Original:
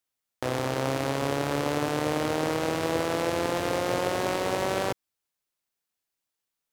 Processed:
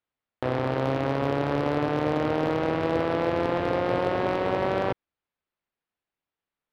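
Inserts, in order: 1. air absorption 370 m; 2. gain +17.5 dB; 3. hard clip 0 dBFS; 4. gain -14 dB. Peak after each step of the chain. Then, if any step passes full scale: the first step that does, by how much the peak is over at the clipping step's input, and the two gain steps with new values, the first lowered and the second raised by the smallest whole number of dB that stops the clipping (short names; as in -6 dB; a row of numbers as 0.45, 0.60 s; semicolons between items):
-13.5, +4.0, 0.0, -14.0 dBFS; step 2, 4.0 dB; step 2 +13.5 dB, step 4 -10 dB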